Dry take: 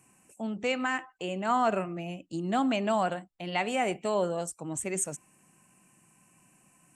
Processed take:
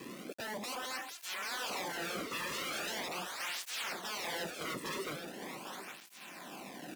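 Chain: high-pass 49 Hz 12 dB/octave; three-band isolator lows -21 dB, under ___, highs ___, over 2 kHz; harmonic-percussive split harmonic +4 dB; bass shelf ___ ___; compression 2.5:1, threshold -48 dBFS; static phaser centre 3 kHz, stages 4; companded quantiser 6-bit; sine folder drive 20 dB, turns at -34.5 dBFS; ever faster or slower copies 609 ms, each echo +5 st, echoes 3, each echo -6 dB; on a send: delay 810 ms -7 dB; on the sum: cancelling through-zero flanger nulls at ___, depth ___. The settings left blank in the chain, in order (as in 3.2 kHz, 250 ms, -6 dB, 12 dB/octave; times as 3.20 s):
180 Hz, -24 dB, 73 Hz, -10 dB, 0.41 Hz, 1.4 ms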